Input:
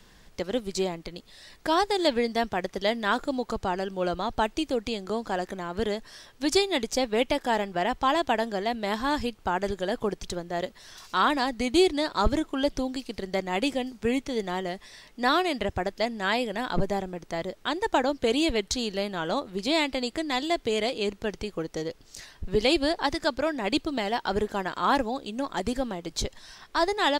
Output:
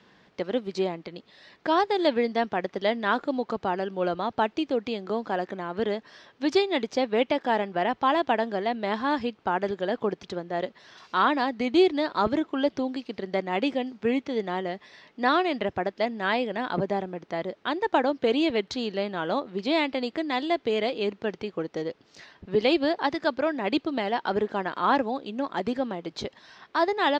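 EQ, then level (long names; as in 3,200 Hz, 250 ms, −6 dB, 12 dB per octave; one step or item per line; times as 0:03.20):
high-pass filter 170 Hz 12 dB per octave
high-frequency loss of the air 210 metres
+2.0 dB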